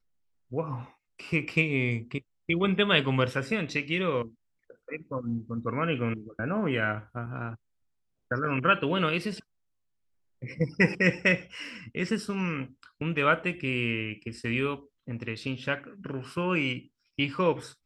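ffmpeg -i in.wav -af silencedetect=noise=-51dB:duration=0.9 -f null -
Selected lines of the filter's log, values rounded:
silence_start: 9.42
silence_end: 10.42 | silence_duration: 1.00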